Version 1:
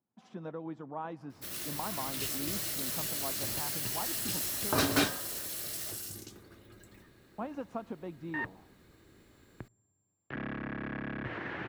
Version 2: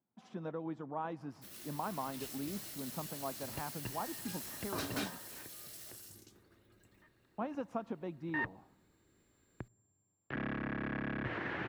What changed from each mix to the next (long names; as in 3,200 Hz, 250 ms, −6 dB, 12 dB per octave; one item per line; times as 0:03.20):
first sound −11.5 dB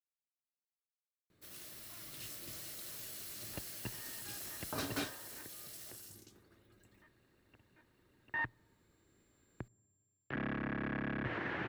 speech: muted